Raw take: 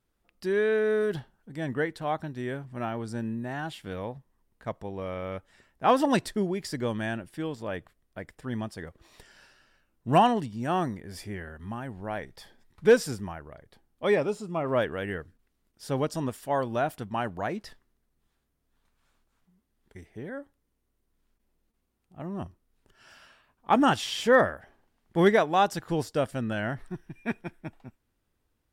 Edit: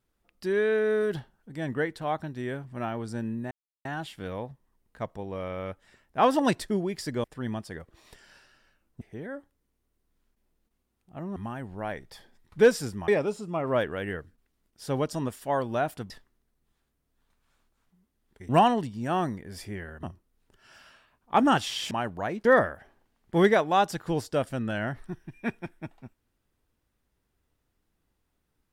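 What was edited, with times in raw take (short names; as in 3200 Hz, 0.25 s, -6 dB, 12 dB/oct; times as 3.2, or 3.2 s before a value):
3.51 insert silence 0.34 s
6.9–8.31 cut
10.08–11.62 swap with 20.04–22.39
13.34–14.09 cut
17.11–17.65 move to 24.27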